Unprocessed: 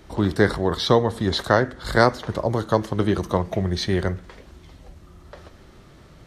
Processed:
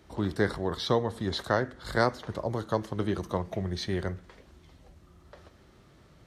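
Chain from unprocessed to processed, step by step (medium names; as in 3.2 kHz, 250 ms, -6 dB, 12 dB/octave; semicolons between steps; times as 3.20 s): high-pass 45 Hz; trim -8.5 dB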